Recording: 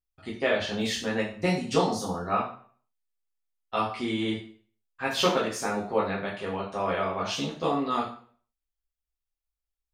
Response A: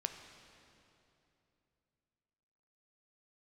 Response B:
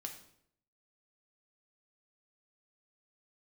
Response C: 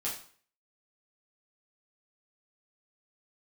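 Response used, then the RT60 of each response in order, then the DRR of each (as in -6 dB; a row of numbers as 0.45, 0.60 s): C; 2.9, 0.70, 0.50 s; 5.5, 2.5, -6.5 dB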